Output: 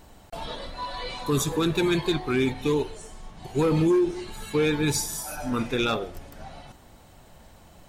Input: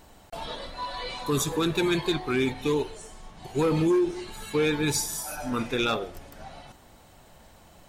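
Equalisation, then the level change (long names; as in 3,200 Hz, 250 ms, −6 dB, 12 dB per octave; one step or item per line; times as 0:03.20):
low-shelf EQ 280 Hz +4 dB
0.0 dB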